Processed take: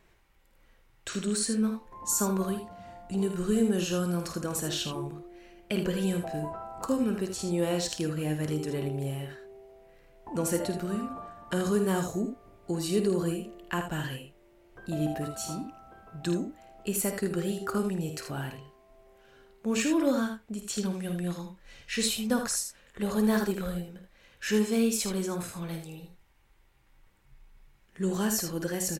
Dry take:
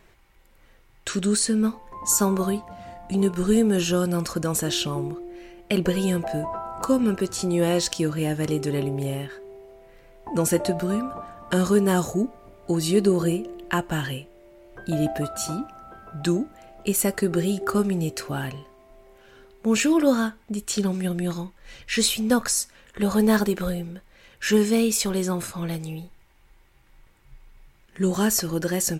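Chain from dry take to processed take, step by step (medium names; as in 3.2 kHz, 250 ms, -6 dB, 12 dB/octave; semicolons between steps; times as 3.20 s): early reflections 52 ms -10 dB, 79 ms -8 dB; trim -7.5 dB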